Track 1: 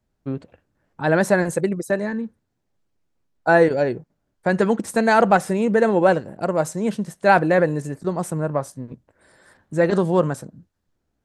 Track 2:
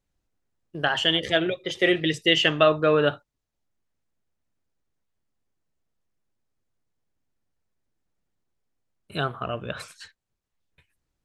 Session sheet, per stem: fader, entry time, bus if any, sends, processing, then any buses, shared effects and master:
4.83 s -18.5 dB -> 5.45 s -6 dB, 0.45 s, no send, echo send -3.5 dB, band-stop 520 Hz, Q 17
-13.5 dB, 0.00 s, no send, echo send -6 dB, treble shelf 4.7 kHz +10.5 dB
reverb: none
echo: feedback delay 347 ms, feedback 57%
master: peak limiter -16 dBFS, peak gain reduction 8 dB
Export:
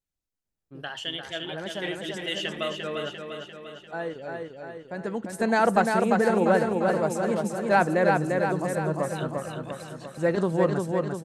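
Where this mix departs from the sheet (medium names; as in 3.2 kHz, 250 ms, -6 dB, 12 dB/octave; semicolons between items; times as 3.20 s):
stem 1: missing band-stop 520 Hz, Q 17; master: missing peak limiter -16 dBFS, peak gain reduction 8 dB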